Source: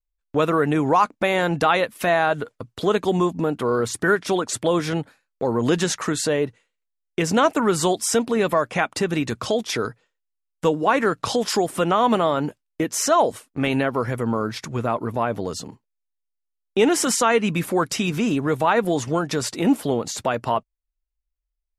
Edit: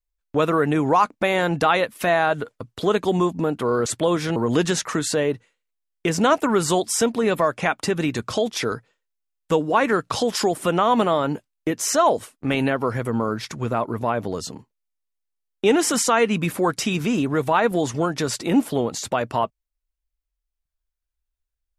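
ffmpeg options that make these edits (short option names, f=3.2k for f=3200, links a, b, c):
-filter_complex "[0:a]asplit=3[a][b][c];[a]atrim=end=3.862[d];[b]atrim=start=4.488:end=4.992[e];[c]atrim=start=5.488[f];[d][e]acrossfade=d=0.004:c1=hsin:c2=hsin[g];[g][f]acrossfade=d=0.004:c1=hsin:c2=hsin"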